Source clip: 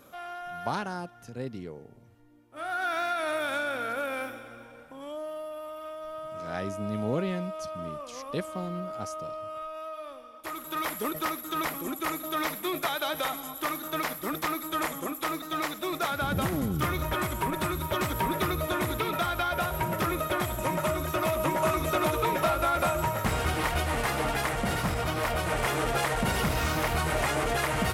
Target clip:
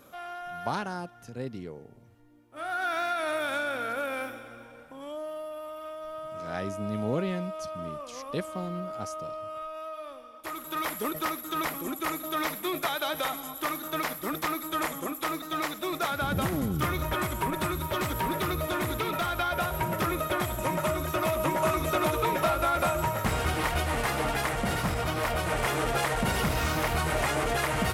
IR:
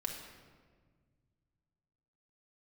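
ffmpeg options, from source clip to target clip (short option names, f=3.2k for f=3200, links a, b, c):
-filter_complex "[0:a]asettb=1/sr,asplit=3[a][b][c];[a]atrim=end=17.794[d];[b]atrim=start=17.79:end=19.34,asetpts=PTS-STARTPTS,afade=t=in:d=0.004:c=qsin,afade=t=out:st=1.546:d=0.004:c=qsin,volume=24dB,asoftclip=hard,volume=-24dB[e];[c]atrim=start=19.336[f];[d][e]acrossfade=d=0.004:c1=hsin:c2=qsin[g];[g][f]acrossfade=d=0.004:c1=qsin:c2=hsin"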